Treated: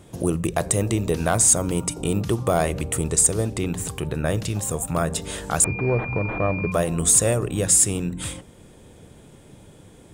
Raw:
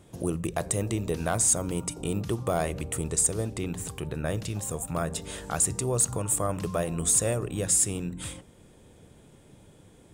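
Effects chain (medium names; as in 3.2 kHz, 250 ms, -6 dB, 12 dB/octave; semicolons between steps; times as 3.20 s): 5.64–6.72 s: class-D stage that switches slowly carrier 2.4 kHz; trim +6.5 dB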